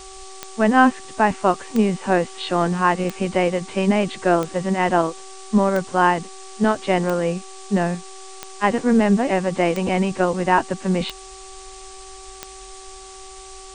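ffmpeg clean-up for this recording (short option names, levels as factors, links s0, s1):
-af "adeclick=t=4,bandreject=f=382.4:t=h:w=4,bandreject=f=764.8:t=h:w=4,bandreject=f=1147.2:t=h:w=4,afftdn=nr=26:nf=-39"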